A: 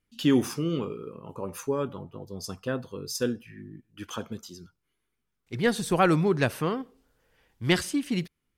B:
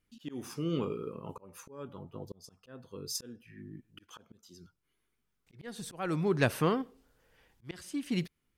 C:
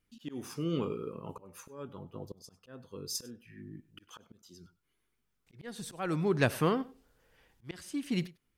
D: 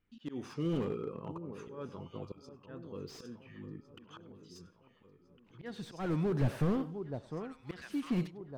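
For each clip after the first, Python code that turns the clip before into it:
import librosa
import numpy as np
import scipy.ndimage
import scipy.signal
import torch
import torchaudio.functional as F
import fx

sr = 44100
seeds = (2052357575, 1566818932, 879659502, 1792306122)

y1 = fx.auto_swell(x, sr, attack_ms=663.0)
y2 = y1 + 10.0 ** (-21.5 / 20.0) * np.pad(y1, (int(99 * sr / 1000.0), 0))[:len(y1)]
y3 = fx.env_lowpass(y2, sr, base_hz=2800.0, full_db=-26.0)
y3 = fx.echo_alternate(y3, sr, ms=703, hz=980.0, feedback_pct=68, wet_db=-12.0)
y3 = fx.slew_limit(y3, sr, full_power_hz=13.0)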